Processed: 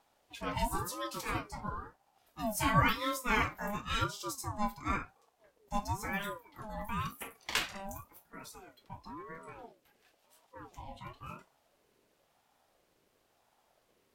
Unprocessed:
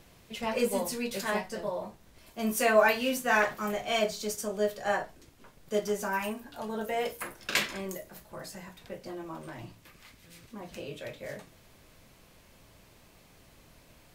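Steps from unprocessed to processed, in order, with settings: spectral noise reduction 10 dB; ring modulator with a swept carrier 600 Hz, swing 35%, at 0.96 Hz; trim -2 dB

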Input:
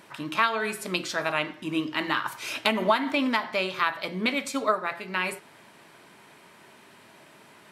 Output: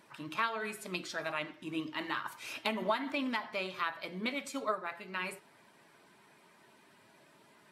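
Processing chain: coarse spectral quantiser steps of 15 dB; trim -9 dB

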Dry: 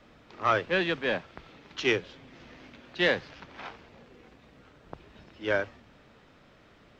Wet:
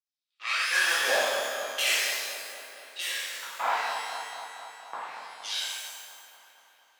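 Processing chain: tracing distortion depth 0.31 ms; gate -44 dBFS, range -40 dB; 1.88–3.67 s: tilt shelf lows +5.5 dB, about 1.4 kHz; compression 3:1, threshold -38 dBFS, peak gain reduction 16 dB; LFO high-pass saw down 0.76 Hz 480–6300 Hz; feedback echo behind a low-pass 235 ms, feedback 68%, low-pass 1.4 kHz, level -7 dB; pitch-shifted reverb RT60 1.3 s, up +12 st, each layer -8 dB, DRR -9.5 dB; trim +3.5 dB

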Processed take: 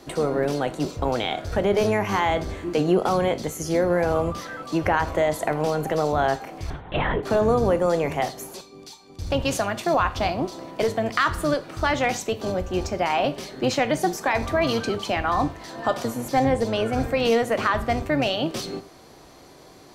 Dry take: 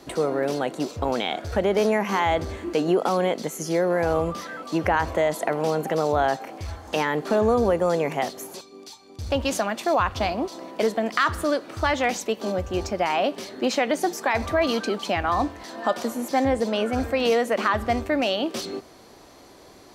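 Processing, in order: octave divider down 1 oct, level -5 dB; 6.70–7.23 s: LPC vocoder at 8 kHz whisper; gated-style reverb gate 130 ms falling, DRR 11 dB

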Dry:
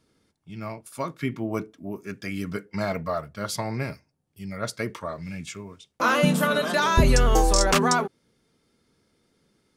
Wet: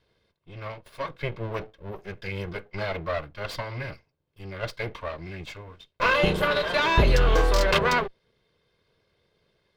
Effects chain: comb filter that takes the minimum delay 1.9 ms; resonant high shelf 5.2 kHz -11.5 dB, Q 1.5

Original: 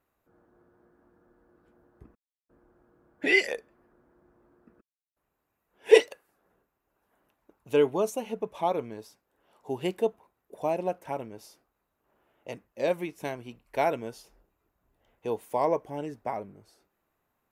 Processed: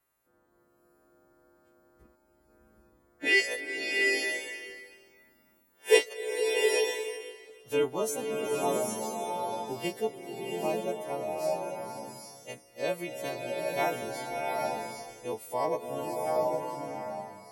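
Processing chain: partials quantised in pitch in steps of 2 st; 3.51–5.94 s: treble shelf 10 kHz +11 dB; swelling reverb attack 820 ms, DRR -0.5 dB; trim -4 dB

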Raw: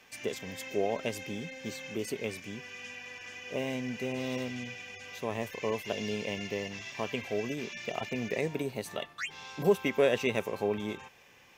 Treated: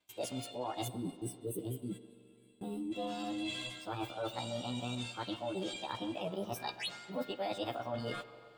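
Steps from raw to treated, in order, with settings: short-time spectra conjugated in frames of 42 ms; spectral noise reduction 6 dB; time-frequency box 1.19–3.94 s, 350–5800 Hz -19 dB; gate -56 dBFS, range -20 dB; bass shelf 370 Hz +6 dB; reverse; compression 6:1, threshold -49 dBFS, peak gain reduction 25.5 dB; reverse; feedback echo behind a band-pass 183 ms, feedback 56%, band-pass 520 Hz, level -14 dB; spring tank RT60 4 s, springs 56 ms, chirp 25 ms, DRR 15 dB; speed mistake 33 rpm record played at 45 rpm; trim +12 dB

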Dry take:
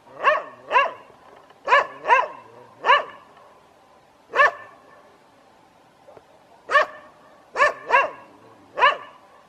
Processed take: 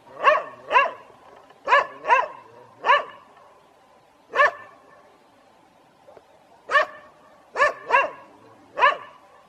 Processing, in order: coarse spectral quantiser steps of 15 dB; gain riding 0.5 s

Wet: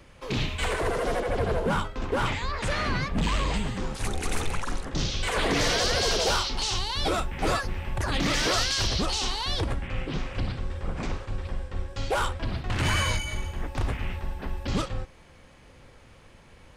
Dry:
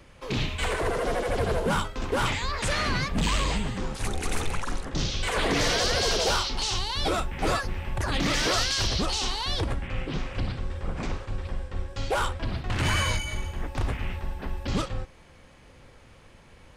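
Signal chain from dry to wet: 1.20–3.54 s: treble shelf 4 kHz -8.5 dB

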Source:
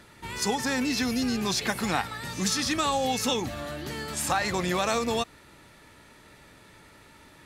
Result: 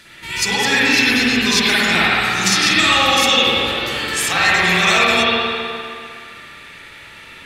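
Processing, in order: FFT filter 910 Hz 0 dB, 2.5 kHz +15 dB, 11 kHz +10 dB; on a send: feedback echo behind a band-pass 129 ms, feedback 66%, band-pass 770 Hz, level -4 dB; on the sum: spring tank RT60 2 s, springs 51/57 ms, chirp 60 ms, DRR -8 dB; trim -2 dB

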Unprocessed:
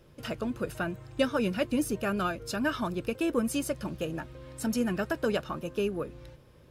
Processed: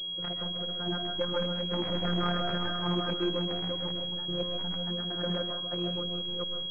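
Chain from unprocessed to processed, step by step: chunks repeated in reverse 222 ms, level -4 dB; in parallel at 0 dB: peak limiter -23 dBFS, peak gain reduction 8.5 dB; on the sum: random-step tremolo, depth 80%; saturation -22.5 dBFS, distortion -13 dB; robot voice 176 Hz; reverberation RT60 0.35 s, pre-delay 95 ms, DRR 4.5 dB; class-D stage that switches slowly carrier 3.3 kHz

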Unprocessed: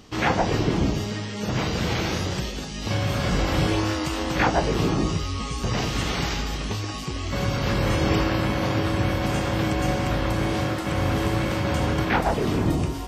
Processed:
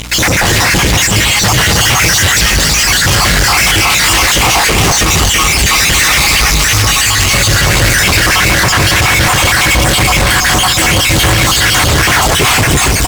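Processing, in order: random holes in the spectrogram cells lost 54%; graphic EQ 250/500/2000/8000 Hz -9/-5/+8/+12 dB; fuzz box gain 45 dB, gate -48 dBFS; on a send: feedback delay 335 ms, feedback 58%, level -7 dB; on the sum: hum 60 Hz, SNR 18 dB; trim +4 dB

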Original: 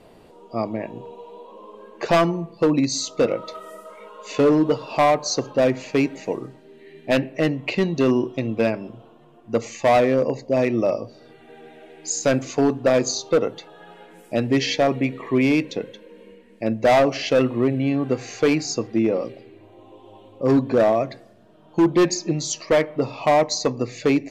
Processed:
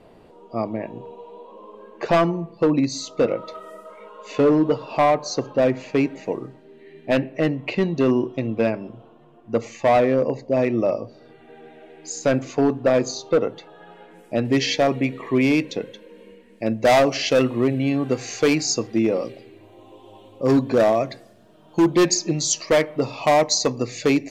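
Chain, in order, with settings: treble shelf 4.1 kHz -8.5 dB, from 14.45 s +2.5 dB, from 16.85 s +8 dB

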